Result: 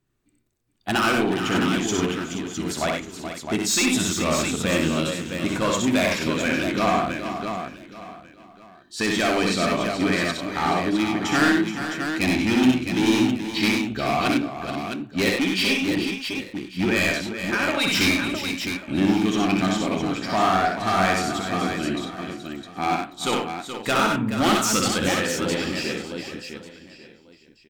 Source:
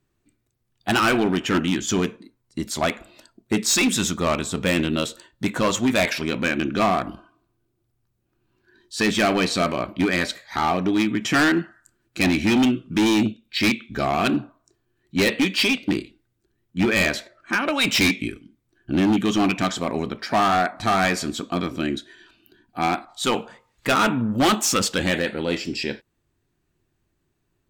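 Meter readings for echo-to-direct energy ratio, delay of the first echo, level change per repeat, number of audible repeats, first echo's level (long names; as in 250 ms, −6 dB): 0.5 dB, 63 ms, repeats not evenly spaced, 11, −3.5 dB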